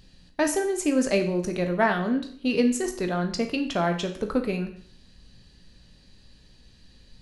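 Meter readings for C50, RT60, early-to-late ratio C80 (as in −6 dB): 9.5 dB, 0.55 s, 13.5 dB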